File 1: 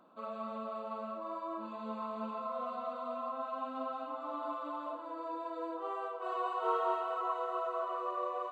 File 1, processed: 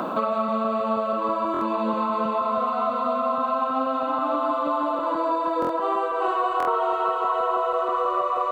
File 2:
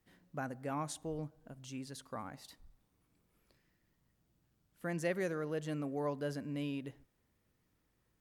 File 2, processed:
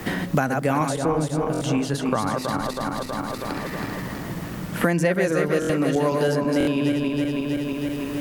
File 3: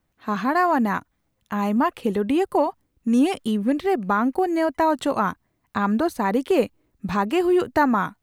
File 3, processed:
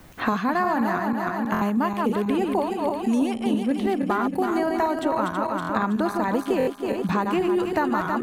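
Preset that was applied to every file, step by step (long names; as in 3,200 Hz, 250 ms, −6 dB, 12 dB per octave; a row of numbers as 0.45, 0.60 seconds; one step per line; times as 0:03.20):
feedback delay that plays each chunk backwards 161 ms, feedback 65%, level −4.5 dB
buffer that repeats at 0:01.52/0:05.60/0:06.58, samples 1,024, times 3
multiband upward and downward compressor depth 100%
loudness normalisation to −24 LKFS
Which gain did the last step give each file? +11.5, +16.0, −4.5 decibels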